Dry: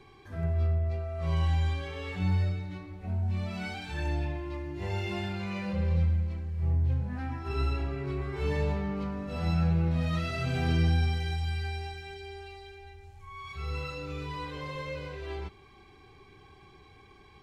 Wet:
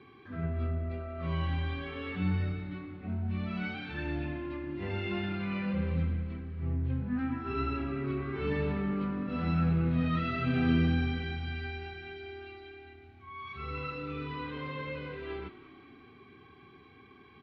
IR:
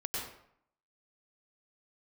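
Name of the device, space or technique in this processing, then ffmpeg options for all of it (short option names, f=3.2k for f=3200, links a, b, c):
frequency-shifting delay pedal into a guitar cabinet: -filter_complex "[0:a]asplit=6[a][b][c][d][e][f];[b]adelay=187,afreqshift=-37,volume=-16.5dB[g];[c]adelay=374,afreqshift=-74,volume=-21.4dB[h];[d]adelay=561,afreqshift=-111,volume=-26.3dB[i];[e]adelay=748,afreqshift=-148,volume=-31.1dB[j];[f]adelay=935,afreqshift=-185,volume=-36dB[k];[a][g][h][i][j][k]amix=inputs=6:normalize=0,highpass=110,equalizer=f=250:t=q:w=4:g=10,equalizer=f=600:t=q:w=4:g=-5,equalizer=f=860:t=q:w=4:g=-7,equalizer=f=1.3k:t=q:w=4:g=5,lowpass=f=3.5k:w=0.5412,lowpass=f=3.5k:w=1.3066"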